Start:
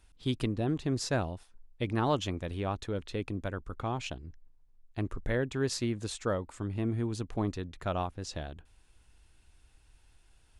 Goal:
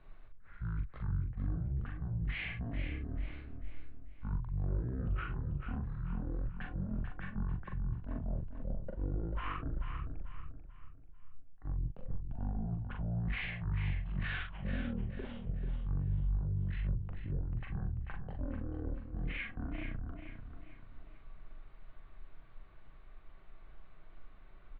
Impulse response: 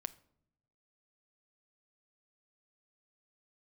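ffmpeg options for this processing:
-filter_complex "[0:a]acrossover=split=320[link_01][link_02];[link_02]alimiter=level_in=2.5dB:limit=-24dB:level=0:latency=1:release=13,volume=-2.5dB[link_03];[link_01][link_03]amix=inputs=2:normalize=0,asetrate=18846,aresample=44100,lowshelf=frequency=200:gain=8,areverse,acompressor=threshold=-35dB:ratio=10,areverse,asoftclip=type=tanh:threshold=-30.5dB,lowpass=frequency=2600:width=0.5412,lowpass=frequency=2600:width=1.3066,asplit=2[link_04][link_05];[link_05]adelay=42,volume=-4.5dB[link_06];[link_04][link_06]amix=inputs=2:normalize=0,aecho=1:1:440|880|1320|1760:0.398|0.151|0.0575|0.0218,volume=2.5dB"

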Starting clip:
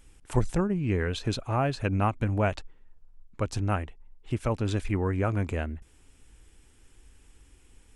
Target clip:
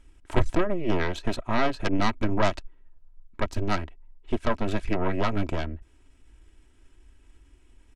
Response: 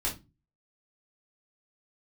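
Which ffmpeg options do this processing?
-af "aemphasis=mode=reproduction:type=50kf,aeval=exprs='0.251*(cos(1*acos(clip(val(0)/0.251,-1,1)))-cos(1*PI/2))+0.1*(cos(6*acos(clip(val(0)/0.251,-1,1)))-cos(6*PI/2))':channel_layout=same,aecho=1:1:3.1:0.48,volume=-1.5dB"

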